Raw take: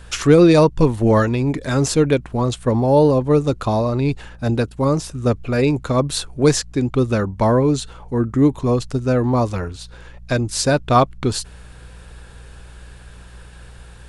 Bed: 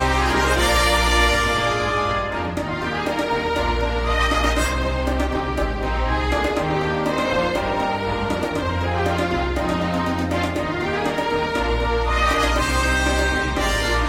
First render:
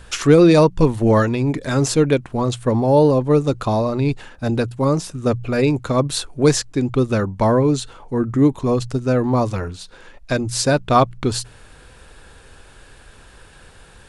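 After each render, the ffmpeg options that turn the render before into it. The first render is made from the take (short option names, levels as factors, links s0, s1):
-af "bandreject=f=60:t=h:w=4,bandreject=f=120:t=h:w=4,bandreject=f=180:t=h:w=4"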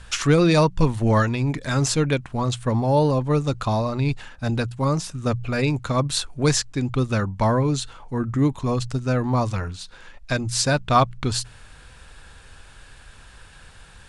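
-af "lowpass=10000,equalizer=f=390:w=0.86:g=-8.5"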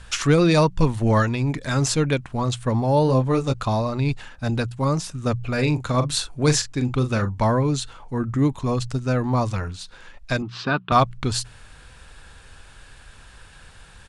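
-filter_complex "[0:a]asplit=3[s0][s1][s2];[s0]afade=t=out:st=3.07:d=0.02[s3];[s1]asplit=2[s4][s5];[s5]adelay=23,volume=0.562[s6];[s4][s6]amix=inputs=2:normalize=0,afade=t=in:st=3.07:d=0.02,afade=t=out:st=3.52:d=0.02[s7];[s2]afade=t=in:st=3.52:d=0.02[s8];[s3][s7][s8]amix=inputs=3:normalize=0,asettb=1/sr,asplit=3[s9][s10][s11];[s9]atrim=end=5.544[s12];[s10]atrim=start=5.54:end=7.38,asetpts=PTS-STARTPTS,afade=t=in:d=0.004:c=qsin,afade=t=out:st=1.836:d=0.004:c=qsin,asplit=2[s13][s14];[s14]adelay=40,volume=0.316[s15];[s13][s15]amix=inputs=2:normalize=0,atrim=end_sample=81144[s16];[s11]atrim=start=7.376[s17];[s12][s16]acrossfade=d=0.004:c1=hsin:c2=qsin[s18];[s18][s17]acrossfade=d=0.004:c1=qsin:c2=hsin,asettb=1/sr,asplit=3[s19][s20][s21];[s19]atrim=end=10.424[s22];[s20]atrim=start=10.42:end=10.92,asetpts=PTS-STARTPTS,afade=t=in:d=0.004:c=qsin,afade=t=out:st=0.496:d=0.004:c=qsin,highpass=190,equalizer=f=190:t=q:w=4:g=8,equalizer=f=380:t=q:w=4:g=4,equalizer=f=550:t=q:w=4:g=-10,equalizer=f=1200:t=q:w=4:g=9,equalizer=f=2100:t=q:w=4:g=-5,equalizer=f=3000:t=q:w=4:g=3,lowpass=f=3400:w=0.5412,lowpass=f=3400:w=1.3066[s23];[s21]atrim=start=10.916[s24];[s22][s23]acrossfade=d=0.004:c1=hsin:c2=qsin[s25];[s25][s24]acrossfade=d=0.004:c1=qsin:c2=hsin"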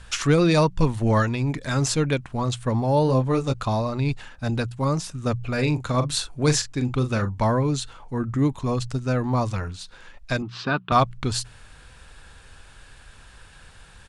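-af "volume=0.841"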